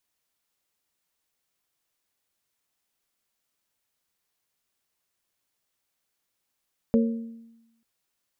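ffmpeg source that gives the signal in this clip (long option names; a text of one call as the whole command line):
ffmpeg -f lavfi -i "aevalsrc='0.158*pow(10,-3*t/0.98)*sin(2*PI*229*t)+0.0841*pow(10,-3*t/0.603)*sin(2*PI*458*t)+0.0447*pow(10,-3*t/0.531)*sin(2*PI*549.6*t)':duration=0.89:sample_rate=44100" out.wav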